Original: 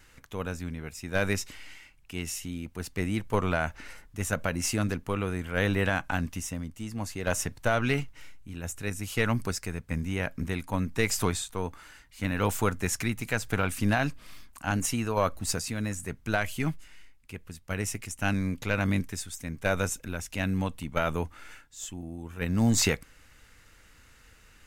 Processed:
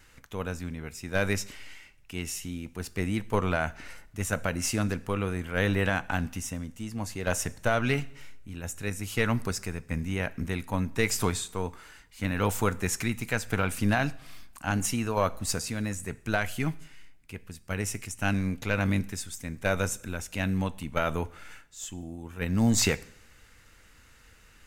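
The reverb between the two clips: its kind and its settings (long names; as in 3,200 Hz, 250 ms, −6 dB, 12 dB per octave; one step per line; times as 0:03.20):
coupled-rooms reverb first 0.6 s, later 1.6 s, DRR 16 dB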